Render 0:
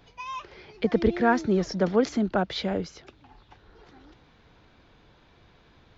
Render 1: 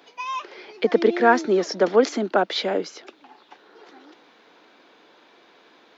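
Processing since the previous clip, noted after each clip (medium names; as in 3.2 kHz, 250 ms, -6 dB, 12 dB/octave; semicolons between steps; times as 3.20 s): high-pass 280 Hz 24 dB/octave; trim +6.5 dB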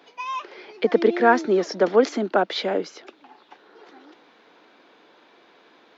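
treble shelf 5.1 kHz -6 dB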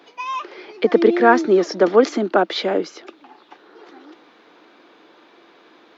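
small resonant body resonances 330/1200 Hz, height 6 dB; trim +3 dB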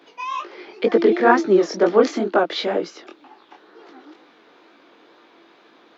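chorus 2.1 Hz, delay 17.5 ms, depth 7.1 ms; trim +1.5 dB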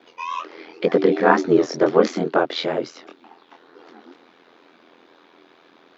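ring modulator 42 Hz; trim +2 dB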